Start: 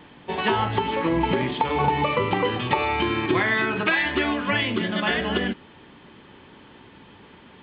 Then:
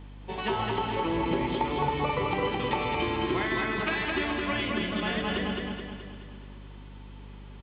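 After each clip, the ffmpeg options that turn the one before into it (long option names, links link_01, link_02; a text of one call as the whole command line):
ffmpeg -i in.wav -af "equalizer=frequency=1700:width_type=o:width=0.31:gain=-4,aecho=1:1:213|426|639|852|1065|1278|1491:0.708|0.368|0.191|0.0995|0.0518|0.0269|0.014,aeval=exprs='val(0)+0.0158*(sin(2*PI*50*n/s)+sin(2*PI*2*50*n/s)/2+sin(2*PI*3*50*n/s)/3+sin(2*PI*4*50*n/s)/4+sin(2*PI*5*50*n/s)/5)':channel_layout=same,volume=-7.5dB" out.wav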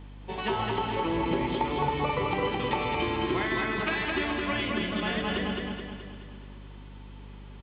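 ffmpeg -i in.wav -af anull out.wav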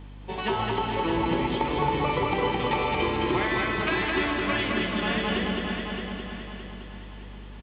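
ffmpeg -i in.wav -af "aecho=1:1:617|1234|1851|2468|3085:0.447|0.174|0.0679|0.0265|0.0103,volume=2dB" out.wav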